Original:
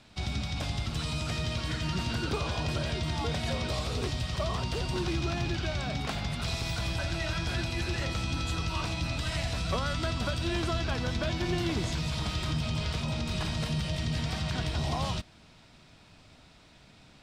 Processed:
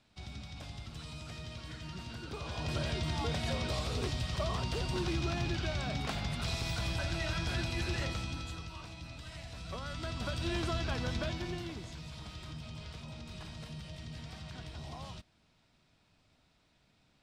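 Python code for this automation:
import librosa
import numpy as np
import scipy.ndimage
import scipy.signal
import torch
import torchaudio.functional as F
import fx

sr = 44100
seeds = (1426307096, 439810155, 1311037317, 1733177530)

y = fx.gain(x, sr, db=fx.line((2.27, -12.5), (2.78, -3.0), (8.02, -3.0), (8.79, -14.5), (9.46, -14.5), (10.45, -4.0), (11.19, -4.0), (11.83, -14.0)))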